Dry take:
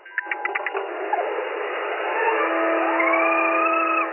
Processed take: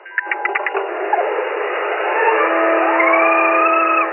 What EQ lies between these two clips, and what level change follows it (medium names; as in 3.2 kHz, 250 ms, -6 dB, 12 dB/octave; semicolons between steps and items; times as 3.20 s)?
steep high-pass 320 Hz; distance through air 440 m; treble shelf 2.5 kHz +7.5 dB; +7.5 dB